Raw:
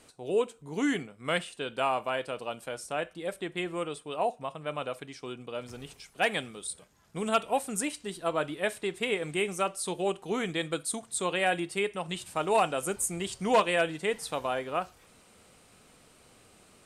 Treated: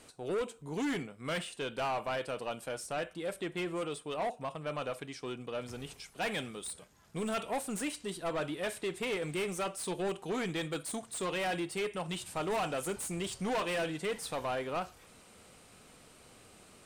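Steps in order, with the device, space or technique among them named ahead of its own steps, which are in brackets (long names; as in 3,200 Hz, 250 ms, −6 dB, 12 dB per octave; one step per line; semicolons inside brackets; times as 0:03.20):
saturation between pre-emphasis and de-emphasis (high-shelf EQ 5,300 Hz +10 dB; soft clipping −30.5 dBFS, distortion −6 dB; high-shelf EQ 5,300 Hz −10 dB)
level +1 dB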